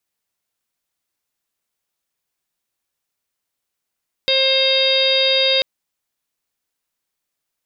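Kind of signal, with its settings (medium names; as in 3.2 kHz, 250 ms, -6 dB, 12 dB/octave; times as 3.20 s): steady additive tone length 1.34 s, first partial 532 Hz, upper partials -19/-14/-7.5/-5/-5/2.5/-15.5/-3 dB, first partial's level -19 dB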